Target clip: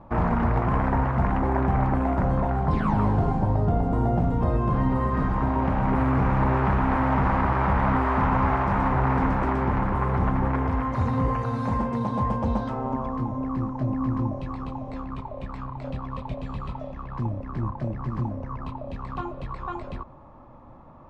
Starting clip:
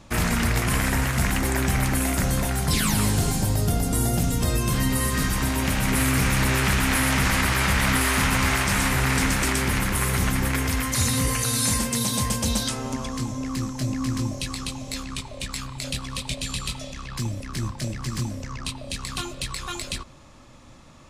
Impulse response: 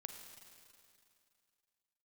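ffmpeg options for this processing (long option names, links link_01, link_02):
-af "lowpass=frequency=930:width_type=q:width=2.2"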